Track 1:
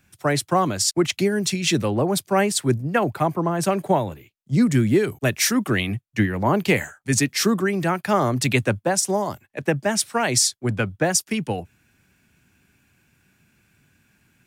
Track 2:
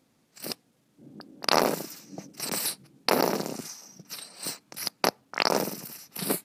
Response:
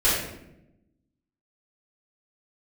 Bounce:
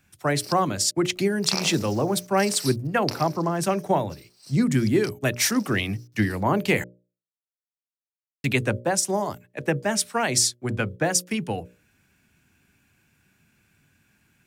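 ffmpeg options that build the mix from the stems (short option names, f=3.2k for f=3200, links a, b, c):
-filter_complex "[0:a]volume=-2dB,asplit=3[a][b][c];[a]atrim=end=6.84,asetpts=PTS-STARTPTS,afade=t=out:st=6.836:d=0.004:c=hsin[d];[b]atrim=start=6.84:end=8.44,asetpts=PTS-STARTPTS,volume=0[e];[c]atrim=start=8.44,asetpts=PTS-STARTPTS,afade=t=in:d=0.004:c=hsin[f];[d][e][f]concat=n=3:v=0:a=1[g];[1:a]equalizer=f=5.2k:w=0.98:g=14,acrusher=bits=6:mix=0:aa=0.000001,volume=-11.5dB,afade=t=out:st=2.88:d=0.45:silence=0.266073[h];[g][h]amix=inputs=2:normalize=0,bandreject=f=60:t=h:w=6,bandreject=f=120:t=h:w=6,bandreject=f=180:t=h:w=6,bandreject=f=240:t=h:w=6,bandreject=f=300:t=h:w=6,bandreject=f=360:t=h:w=6,bandreject=f=420:t=h:w=6,bandreject=f=480:t=h:w=6,bandreject=f=540:t=h:w=6,bandreject=f=600:t=h:w=6"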